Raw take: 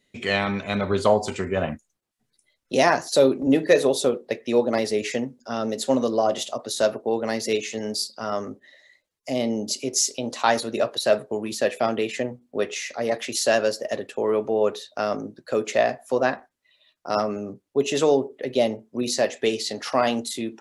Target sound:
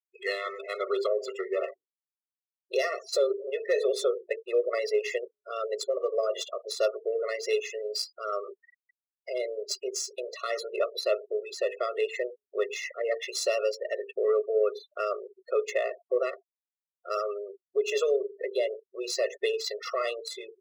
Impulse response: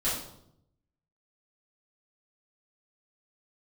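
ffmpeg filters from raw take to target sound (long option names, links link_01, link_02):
-filter_complex "[0:a]bandreject=frequency=50:width_type=h:width=6,bandreject=frequency=100:width_type=h:width=6,bandreject=frequency=150:width_type=h:width=6,bandreject=frequency=200:width_type=h:width=6,bandreject=frequency=250:width_type=h:width=6,bandreject=frequency=300:width_type=h:width=6,bandreject=frequency=350:width_type=h:width=6,bandreject=frequency=400:width_type=h:width=6,bandreject=frequency=450:width_type=h:width=6,afftfilt=real='re*gte(hypot(re,im),0.0224)':imag='im*gte(hypot(re,im),0.0224)':win_size=1024:overlap=0.75,equalizer=frequency=680:width_type=o:width=0.54:gain=-6.5,acrossover=split=100|980[link_01][link_02][link_03];[link_01]acompressor=threshold=-58dB:ratio=12[link_04];[link_04][link_02][link_03]amix=inputs=3:normalize=0,alimiter=limit=-15dB:level=0:latency=1:release=123,adynamicsmooth=sensitivity=3:basefreq=5100,afftfilt=real='re*eq(mod(floor(b*sr/1024/360),2),1)':imag='im*eq(mod(floor(b*sr/1024/360),2),1)':win_size=1024:overlap=0.75"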